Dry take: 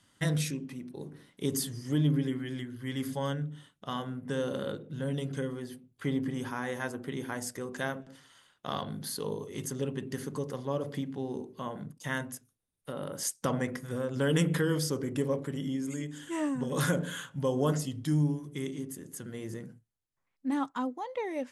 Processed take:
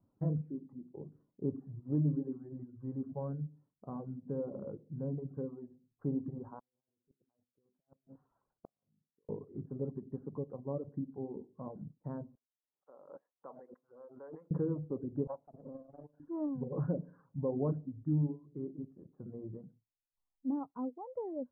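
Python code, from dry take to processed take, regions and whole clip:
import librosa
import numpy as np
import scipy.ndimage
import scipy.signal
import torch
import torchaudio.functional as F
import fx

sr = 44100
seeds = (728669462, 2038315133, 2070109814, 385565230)

y = fx.chain(x, sr, fx.over_compress(threshold_db=-38.0, ratio=-0.5),
    fx.gate_flip(shuts_db=-31.0, range_db=-35), at=(6.59, 9.29))
y = fx.chain(y, sr, fx.bessel_highpass(hz=1300.0, order=2),
    fx.high_shelf(hz=9100.0, db=7.5),
    fx.pre_swell(db_per_s=95.0), at=(12.35, 14.51))
y = fx.chain(y, sr, fx.lower_of_two(delay_ms=1.3),
    fx.highpass(hz=450.0, slope=6),
    fx.transient(attack_db=3, sustain_db=-7), at=(15.27, 16.2))
y = fx.dereverb_blind(y, sr, rt60_s=1.0)
y = scipy.signal.sosfilt(scipy.signal.bessel(8, 580.0, 'lowpass', norm='mag', fs=sr, output='sos'), y)
y = F.gain(torch.from_numpy(y), -2.5).numpy()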